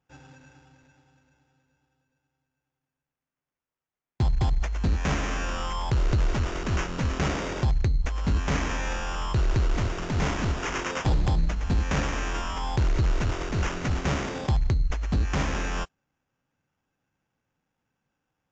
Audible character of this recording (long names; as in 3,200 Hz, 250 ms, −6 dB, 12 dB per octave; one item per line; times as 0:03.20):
aliases and images of a low sample rate 4,200 Hz, jitter 0%
AAC